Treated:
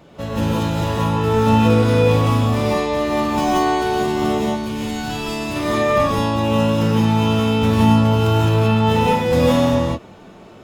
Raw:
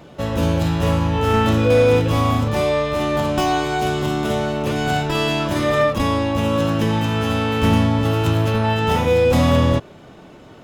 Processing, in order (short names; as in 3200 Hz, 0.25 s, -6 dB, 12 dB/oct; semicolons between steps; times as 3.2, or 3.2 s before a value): 4.38–5.56 bell 670 Hz -9 dB 2.7 oct; non-linear reverb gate 0.2 s rising, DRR -4 dB; gain -4.5 dB